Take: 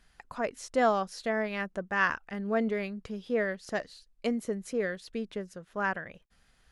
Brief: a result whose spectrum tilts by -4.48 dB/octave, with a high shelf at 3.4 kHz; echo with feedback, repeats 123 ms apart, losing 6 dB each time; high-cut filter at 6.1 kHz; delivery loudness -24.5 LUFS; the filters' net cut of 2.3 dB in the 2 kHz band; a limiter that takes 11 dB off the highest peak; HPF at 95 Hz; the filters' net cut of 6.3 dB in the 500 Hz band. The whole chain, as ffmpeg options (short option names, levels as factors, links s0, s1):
-af "highpass=95,lowpass=6100,equalizer=f=500:t=o:g=-8,equalizer=f=2000:t=o:g=-4,highshelf=f=3400:g=6.5,alimiter=level_in=1.19:limit=0.0631:level=0:latency=1,volume=0.841,aecho=1:1:123|246|369|492|615|738:0.501|0.251|0.125|0.0626|0.0313|0.0157,volume=3.98"